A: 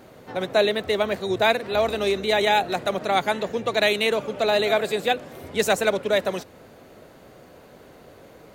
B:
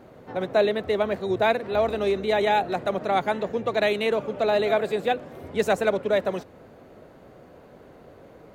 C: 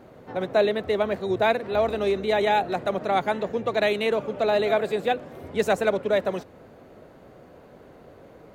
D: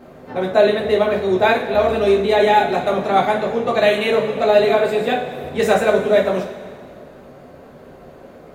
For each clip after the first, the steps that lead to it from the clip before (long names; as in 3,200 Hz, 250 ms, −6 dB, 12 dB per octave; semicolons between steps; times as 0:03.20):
high-shelf EQ 2,500 Hz −12 dB
no processing that can be heard
convolution reverb, pre-delay 3 ms, DRR −3 dB; level +2.5 dB